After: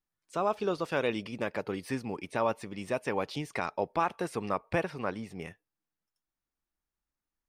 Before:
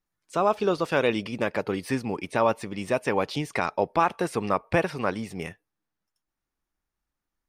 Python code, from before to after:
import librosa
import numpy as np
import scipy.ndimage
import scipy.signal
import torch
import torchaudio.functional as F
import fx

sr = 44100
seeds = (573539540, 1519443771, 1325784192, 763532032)

y = fx.high_shelf(x, sr, hz=4300.0, db=-5.5, at=(4.83, 5.48))
y = y * librosa.db_to_amplitude(-6.5)